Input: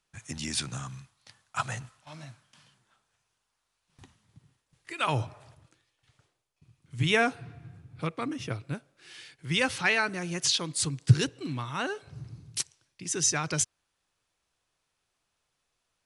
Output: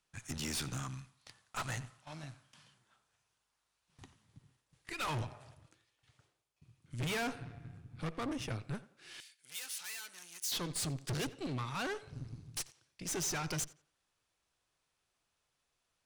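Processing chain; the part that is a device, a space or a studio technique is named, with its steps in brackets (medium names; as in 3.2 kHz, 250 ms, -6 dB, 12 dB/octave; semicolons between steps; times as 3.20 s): rockabilly slapback (valve stage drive 36 dB, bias 0.8; tape echo 87 ms, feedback 30%, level -17 dB, low-pass 4 kHz); 9.20–10.52 s: differentiator; trim +2 dB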